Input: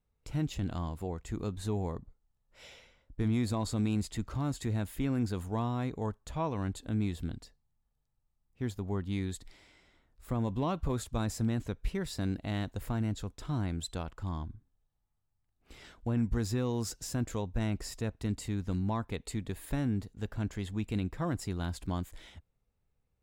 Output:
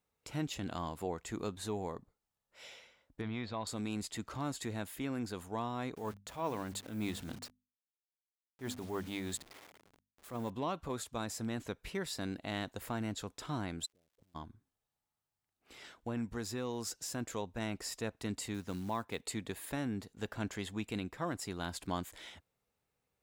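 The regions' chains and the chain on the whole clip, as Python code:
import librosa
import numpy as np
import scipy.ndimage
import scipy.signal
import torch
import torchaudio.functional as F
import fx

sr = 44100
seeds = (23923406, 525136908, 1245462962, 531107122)

y = fx.chain(x, sr, fx.lowpass(hz=4000.0, slope=24),
    fx.peak_eq(hz=290.0, db=-6.5, octaves=0.8), at=(3.21, 3.67))
y = fx.chain(y, sr, fx.delta_hold(step_db=-53.0),
    fx.hum_notches(base_hz=50, count=5),
    fx.transient(attack_db=-9, sustain_db=3), at=(5.95, 10.5))
y = fx.steep_lowpass(y, sr, hz=590.0, slope=36, at=(13.85, 14.34), fade=0.02)
y = fx.gate_flip(y, sr, shuts_db=-37.0, range_db=-31, at=(13.85, 14.34), fade=0.02)
y = fx.dmg_crackle(y, sr, seeds[0], per_s=280.0, level_db=-67.0, at=(13.85, 14.34), fade=0.02)
y = fx.chain(y, sr, fx.highpass(hz=55.0, slope=12),
    fx.quant_float(bits=4), at=(18.54, 19.26))
y = fx.highpass(y, sr, hz=440.0, slope=6)
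y = fx.rider(y, sr, range_db=3, speed_s=0.5)
y = y * 10.0 ** (1.5 / 20.0)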